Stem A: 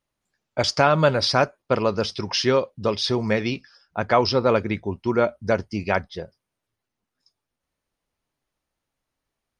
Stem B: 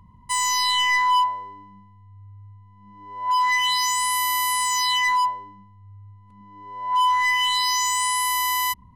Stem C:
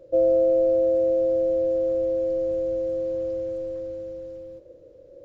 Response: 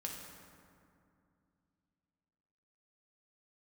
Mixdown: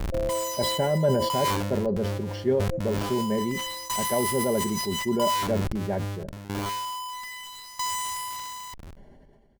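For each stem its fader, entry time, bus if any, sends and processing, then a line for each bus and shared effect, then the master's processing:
-4.5 dB, 0.00 s, no send, running mean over 35 samples; comb 5 ms, depth 52%
-3.5 dB, 0.00 s, no send, low shelf 140 Hz +8.5 dB; Schmitt trigger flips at -42.5 dBFS; dB-ramp tremolo decaying 0.77 Hz, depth 18 dB
-9.5 dB, 0.00 s, no send, band shelf 4100 Hz -14 dB 1.1 oct; auto duck -13 dB, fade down 0.20 s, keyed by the first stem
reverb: off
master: sustainer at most 32 dB/s

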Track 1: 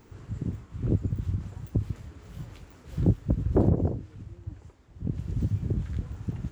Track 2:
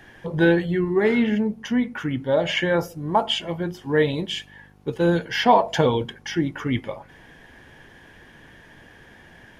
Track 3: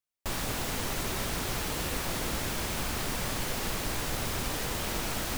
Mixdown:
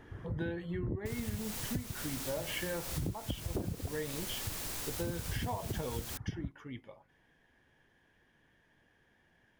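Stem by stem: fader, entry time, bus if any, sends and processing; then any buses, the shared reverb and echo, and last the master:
+0.5 dB, 0.00 s, no send, elliptic low-pass 2000 Hz; reverb removal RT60 1.6 s
6.16 s -12.5 dB -> 6.55 s -21 dB, 0.00 s, no send, dry
-11.5 dB, 0.80 s, no send, high shelf 4100 Hz +10.5 dB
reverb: off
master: compressor 10:1, threshold -33 dBFS, peak gain reduction 17 dB

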